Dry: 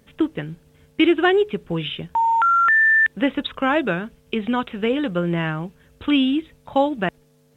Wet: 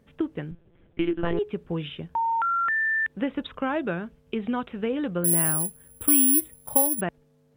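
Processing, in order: treble shelf 2.4 kHz -10.5 dB; compression, threshold -18 dBFS, peak gain reduction 6 dB; 0.51–1.39 s: monotone LPC vocoder at 8 kHz 170 Hz; 5.24–7.01 s: careless resampling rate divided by 4×, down none, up zero stuff; trim -4 dB

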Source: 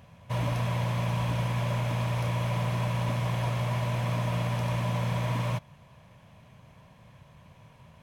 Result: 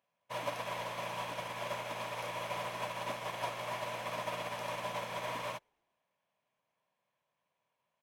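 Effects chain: high-pass 430 Hz 12 dB/octave; frequency-shifting echo 112 ms, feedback 59%, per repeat -84 Hz, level -20 dB; upward expansion 2.5:1, over -50 dBFS; trim +1 dB

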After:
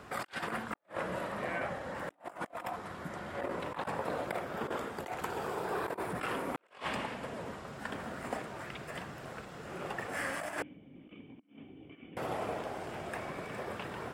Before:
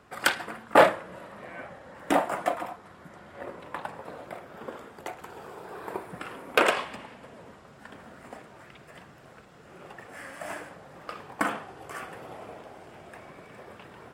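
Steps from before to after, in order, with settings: compressor with a negative ratio -40 dBFS, ratio -0.5; 10.62–12.17 s: cascade formant filter i

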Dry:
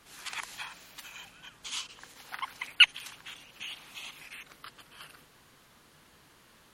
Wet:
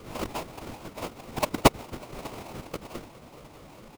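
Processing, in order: drifting ripple filter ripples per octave 0.63, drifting +2.8 Hz, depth 14 dB; high-pass 62 Hz 6 dB/octave; resonant high shelf 2.5 kHz -11 dB, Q 1.5; in parallel at -1.5 dB: compression, threshold -47 dBFS, peak gain reduction 27.5 dB; on the sum: sample-rate reducer 1.7 kHz, jitter 20%; time stretch by phase-locked vocoder 0.59×; on a send: feedback delay 597 ms, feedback 43%, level -22 dB; on the sum: trim +6.5 dB

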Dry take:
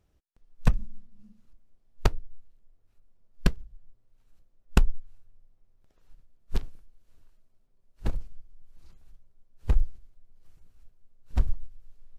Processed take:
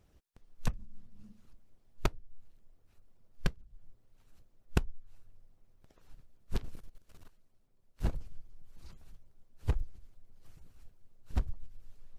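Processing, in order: harmonic-percussive split harmonic -9 dB; 6.64–8.07 s: waveshaping leveller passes 2; compression 4:1, threshold -36 dBFS, peak gain reduction 18.5 dB; trim +7.5 dB

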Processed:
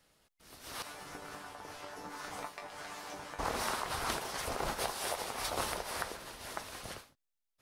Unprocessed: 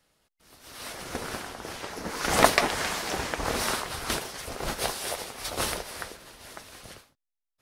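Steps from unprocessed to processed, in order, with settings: compression 5:1, threshold -35 dBFS, peak gain reduction 20.5 dB; dynamic bell 940 Hz, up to +6 dB, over -54 dBFS, Q 1.1; 0.82–3.39 s: chord resonator G2 fifth, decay 0.2 s

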